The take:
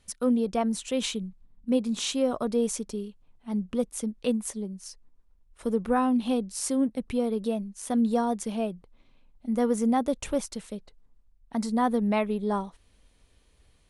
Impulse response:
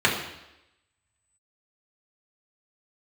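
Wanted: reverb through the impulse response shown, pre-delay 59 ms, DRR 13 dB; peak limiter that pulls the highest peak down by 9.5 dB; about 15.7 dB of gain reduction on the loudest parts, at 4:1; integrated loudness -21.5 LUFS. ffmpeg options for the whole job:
-filter_complex "[0:a]acompressor=threshold=0.01:ratio=4,alimiter=level_in=2.82:limit=0.0631:level=0:latency=1,volume=0.355,asplit=2[s0][s1];[1:a]atrim=start_sample=2205,adelay=59[s2];[s1][s2]afir=irnorm=-1:irlink=0,volume=0.0282[s3];[s0][s3]amix=inputs=2:normalize=0,volume=11.9"

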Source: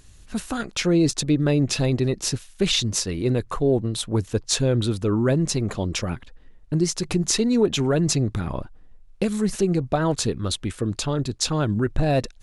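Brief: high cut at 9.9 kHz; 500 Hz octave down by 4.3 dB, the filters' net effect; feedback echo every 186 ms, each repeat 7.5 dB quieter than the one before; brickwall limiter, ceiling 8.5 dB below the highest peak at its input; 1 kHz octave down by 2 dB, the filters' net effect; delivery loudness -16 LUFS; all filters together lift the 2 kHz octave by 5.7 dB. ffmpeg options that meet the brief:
-af "lowpass=9900,equalizer=f=500:t=o:g=-5.5,equalizer=f=1000:t=o:g=-3.5,equalizer=f=2000:t=o:g=9,alimiter=limit=0.178:level=0:latency=1,aecho=1:1:186|372|558|744|930:0.422|0.177|0.0744|0.0312|0.0131,volume=2.66"

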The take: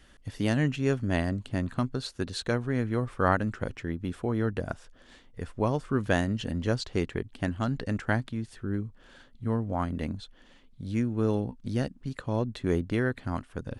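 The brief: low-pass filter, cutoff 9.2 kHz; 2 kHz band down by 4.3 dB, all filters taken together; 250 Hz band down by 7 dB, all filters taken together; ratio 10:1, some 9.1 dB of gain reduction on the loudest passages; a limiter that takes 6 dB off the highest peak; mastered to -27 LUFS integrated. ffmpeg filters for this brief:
-af "lowpass=9200,equalizer=f=250:t=o:g=-9,equalizer=f=2000:t=o:g=-5.5,acompressor=threshold=0.0316:ratio=10,volume=3.98,alimiter=limit=0.211:level=0:latency=1"

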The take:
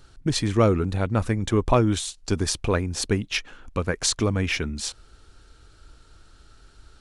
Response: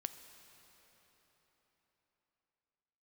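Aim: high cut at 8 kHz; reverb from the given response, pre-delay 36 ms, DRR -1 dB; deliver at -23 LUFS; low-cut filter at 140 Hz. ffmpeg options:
-filter_complex "[0:a]highpass=140,lowpass=8000,asplit=2[s0][s1];[1:a]atrim=start_sample=2205,adelay=36[s2];[s1][s2]afir=irnorm=-1:irlink=0,volume=1.41[s3];[s0][s3]amix=inputs=2:normalize=0,volume=0.944"

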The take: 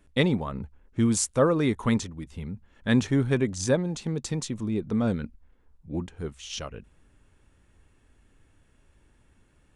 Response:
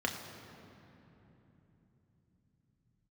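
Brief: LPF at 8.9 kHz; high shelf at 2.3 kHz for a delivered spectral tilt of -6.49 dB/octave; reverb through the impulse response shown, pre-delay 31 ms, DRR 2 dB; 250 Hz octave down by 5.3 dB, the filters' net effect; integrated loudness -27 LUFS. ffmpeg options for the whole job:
-filter_complex "[0:a]lowpass=8900,equalizer=f=250:t=o:g=-6.5,highshelf=f=2300:g=-6.5,asplit=2[s0][s1];[1:a]atrim=start_sample=2205,adelay=31[s2];[s1][s2]afir=irnorm=-1:irlink=0,volume=0.376[s3];[s0][s3]amix=inputs=2:normalize=0,volume=1.12"

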